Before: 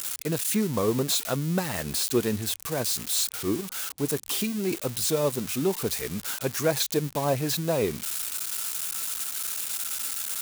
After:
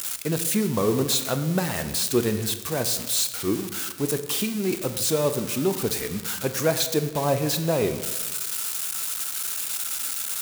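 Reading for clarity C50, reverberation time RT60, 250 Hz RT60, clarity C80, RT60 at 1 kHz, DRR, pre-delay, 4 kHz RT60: 10.5 dB, 1.2 s, 1.4 s, 12.0 dB, 1.2 s, 9.0 dB, 22 ms, 0.85 s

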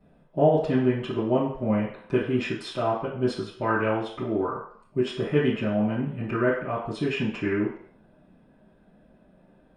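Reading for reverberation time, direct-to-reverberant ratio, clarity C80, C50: 0.60 s, -11.0 dB, 7.5 dB, 4.0 dB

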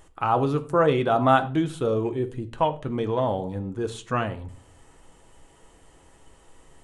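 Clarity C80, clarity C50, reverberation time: 19.5 dB, 15.0 dB, 0.40 s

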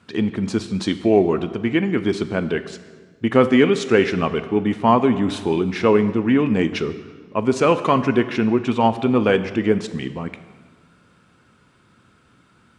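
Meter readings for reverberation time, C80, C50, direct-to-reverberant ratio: 1.6 s, 14.0 dB, 12.5 dB, 10.5 dB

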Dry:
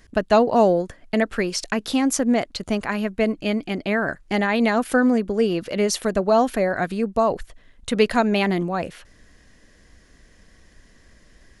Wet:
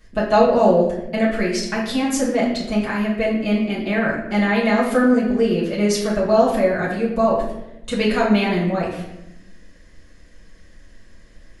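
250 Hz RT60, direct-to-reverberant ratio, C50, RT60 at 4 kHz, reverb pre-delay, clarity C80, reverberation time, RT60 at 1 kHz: 1.4 s, -8.5 dB, 4.0 dB, 0.60 s, 5 ms, 7.0 dB, 0.90 s, 0.80 s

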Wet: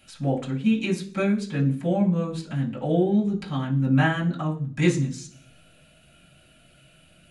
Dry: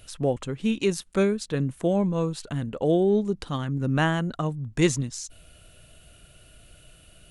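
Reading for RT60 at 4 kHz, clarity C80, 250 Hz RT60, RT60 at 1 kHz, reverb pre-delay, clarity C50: 0.50 s, 16.5 dB, 0.80 s, 0.40 s, 3 ms, 12.0 dB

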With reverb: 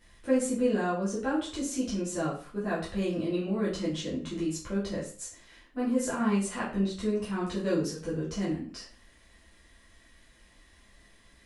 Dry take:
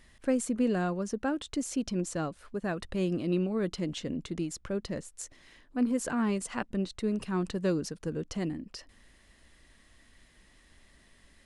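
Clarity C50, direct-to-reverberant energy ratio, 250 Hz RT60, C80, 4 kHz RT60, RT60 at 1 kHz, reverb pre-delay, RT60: 5.5 dB, -9.0 dB, 0.45 s, 10.0 dB, 0.35 s, 0.45 s, 7 ms, 0.40 s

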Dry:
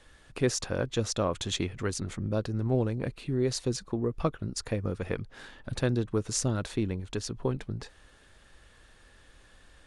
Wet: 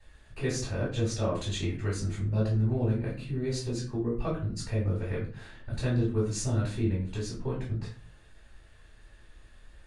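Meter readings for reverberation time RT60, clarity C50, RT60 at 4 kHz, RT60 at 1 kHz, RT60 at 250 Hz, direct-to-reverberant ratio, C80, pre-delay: 0.45 s, 6.0 dB, 0.30 s, 0.40 s, 0.55 s, -10.5 dB, 11.0 dB, 3 ms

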